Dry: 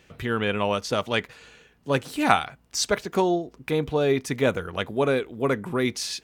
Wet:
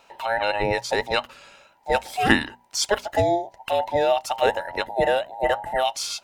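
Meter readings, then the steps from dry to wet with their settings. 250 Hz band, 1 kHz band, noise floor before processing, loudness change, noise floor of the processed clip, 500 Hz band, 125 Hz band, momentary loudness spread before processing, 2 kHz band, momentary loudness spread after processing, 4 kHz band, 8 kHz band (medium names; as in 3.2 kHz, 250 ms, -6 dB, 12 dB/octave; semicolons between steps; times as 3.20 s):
-3.5 dB, +4.0 dB, -60 dBFS, +1.5 dB, -58 dBFS, +1.5 dB, -4.5 dB, 6 LU, +3.5 dB, 6 LU, +2.5 dB, +1.0 dB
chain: every band turned upside down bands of 1 kHz; hum notches 60/120/180/240 Hz; trim +1.5 dB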